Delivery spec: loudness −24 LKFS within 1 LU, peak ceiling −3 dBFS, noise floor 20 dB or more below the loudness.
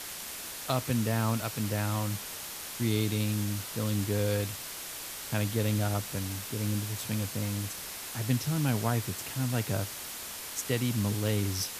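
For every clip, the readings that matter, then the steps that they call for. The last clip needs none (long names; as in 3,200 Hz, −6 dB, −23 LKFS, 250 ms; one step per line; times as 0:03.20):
background noise floor −41 dBFS; target noise floor −52 dBFS; integrated loudness −31.5 LKFS; sample peak −14.0 dBFS; target loudness −24.0 LKFS
→ broadband denoise 11 dB, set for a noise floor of −41 dBFS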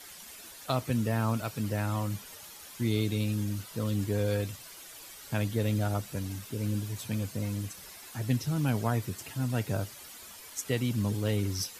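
background noise floor −48 dBFS; target noise floor −52 dBFS
→ broadband denoise 6 dB, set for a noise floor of −48 dBFS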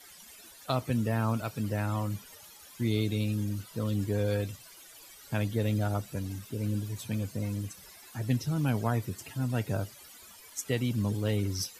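background noise floor −52 dBFS; integrated loudness −32.0 LKFS; sample peak −14.5 dBFS; target loudness −24.0 LKFS
→ level +8 dB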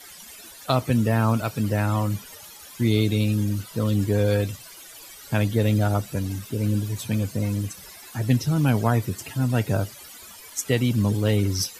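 integrated loudness −24.0 LKFS; sample peak −6.5 dBFS; background noise floor −44 dBFS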